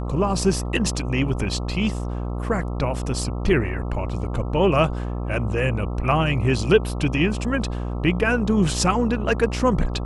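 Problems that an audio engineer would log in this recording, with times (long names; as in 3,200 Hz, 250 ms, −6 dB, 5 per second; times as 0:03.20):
mains buzz 60 Hz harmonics 22 −27 dBFS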